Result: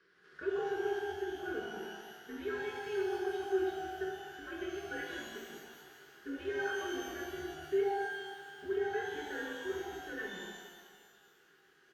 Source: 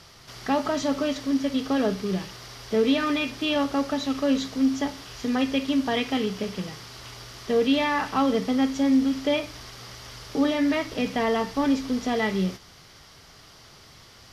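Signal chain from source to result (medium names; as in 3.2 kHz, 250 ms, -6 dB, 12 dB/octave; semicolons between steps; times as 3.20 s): frequency shift -190 Hz; two resonant band-passes 790 Hz, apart 1.9 oct; band-stop 530 Hz, Q 13; comb 5.5 ms, depth 34%; tempo 1.2×; pitch-shifted reverb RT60 1.6 s, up +12 st, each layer -8 dB, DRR -1.5 dB; trim -6.5 dB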